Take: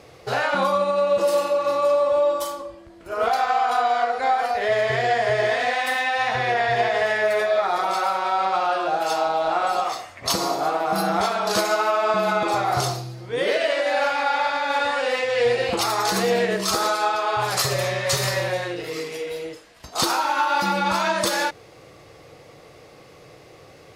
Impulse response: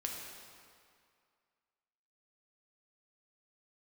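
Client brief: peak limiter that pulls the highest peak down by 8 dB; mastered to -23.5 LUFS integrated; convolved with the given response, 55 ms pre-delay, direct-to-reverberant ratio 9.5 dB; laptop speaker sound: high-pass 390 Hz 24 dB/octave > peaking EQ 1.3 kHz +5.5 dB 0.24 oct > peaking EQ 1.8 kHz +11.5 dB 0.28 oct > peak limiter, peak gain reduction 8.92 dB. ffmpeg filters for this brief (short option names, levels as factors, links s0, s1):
-filter_complex "[0:a]alimiter=limit=0.168:level=0:latency=1,asplit=2[s0][s1];[1:a]atrim=start_sample=2205,adelay=55[s2];[s1][s2]afir=irnorm=-1:irlink=0,volume=0.299[s3];[s0][s3]amix=inputs=2:normalize=0,highpass=f=390:w=0.5412,highpass=f=390:w=1.3066,equalizer=f=1300:t=o:w=0.24:g=5.5,equalizer=f=1800:t=o:w=0.28:g=11.5,volume=0.944,alimiter=limit=0.168:level=0:latency=1"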